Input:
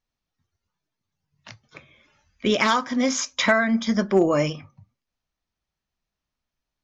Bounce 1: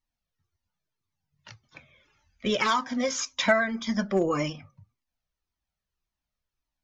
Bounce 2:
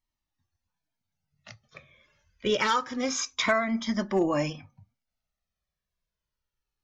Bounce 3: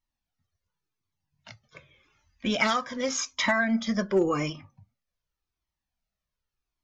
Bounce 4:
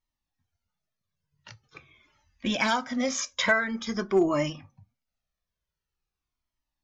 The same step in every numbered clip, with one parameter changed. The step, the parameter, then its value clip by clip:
Shepard-style flanger, rate: 1.8 Hz, 0.26 Hz, 0.88 Hz, 0.46 Hz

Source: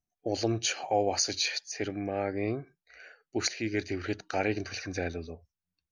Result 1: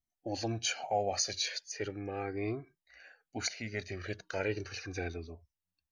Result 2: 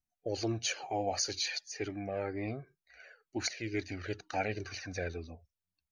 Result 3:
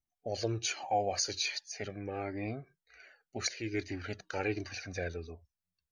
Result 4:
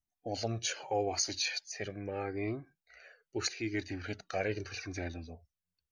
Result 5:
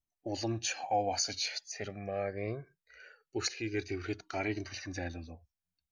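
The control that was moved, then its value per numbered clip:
Shepard-style flanger, rate: 0.37 Hz, 2.1 Hz, 1.3 Hz, 0.8 Hz, 0.22 Hz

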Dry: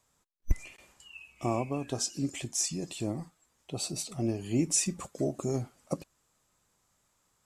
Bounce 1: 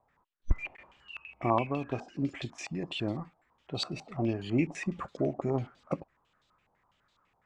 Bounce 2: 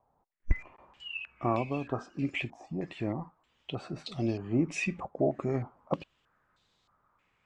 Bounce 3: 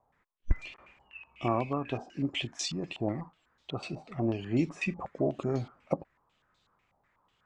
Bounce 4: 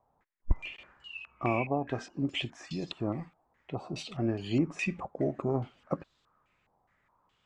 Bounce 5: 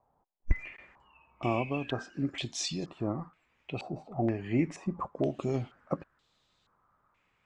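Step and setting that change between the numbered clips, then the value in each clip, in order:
step-sequenced low-pass, rate: 12 Hz, 3.2 Hz, 8.1 Hz, 4.8 Hz, 2.1 Hz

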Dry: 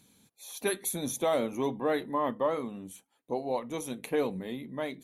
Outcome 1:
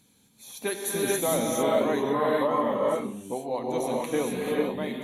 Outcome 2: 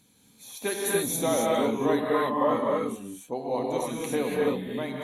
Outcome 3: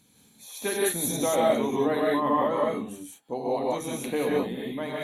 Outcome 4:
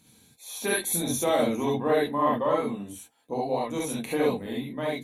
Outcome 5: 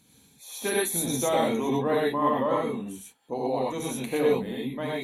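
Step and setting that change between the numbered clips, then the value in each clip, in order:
gated-style reverb, gate: 480 ms, 310 ms, 210 ms, 90 ms, 140 ms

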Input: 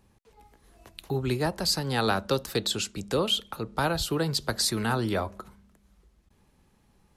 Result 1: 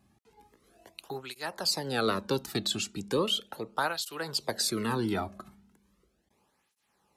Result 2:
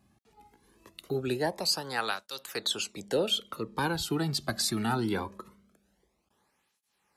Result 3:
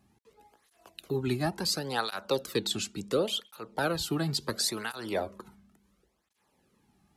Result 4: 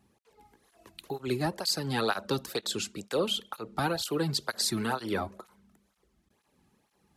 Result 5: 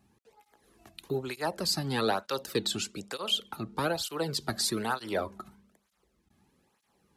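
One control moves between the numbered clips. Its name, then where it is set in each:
cancelling through-zero flanger, nulls at: 0.37 Hz, 0.22 Hz, 0.71 Hz, 2.1 Hz, 1.1 Hz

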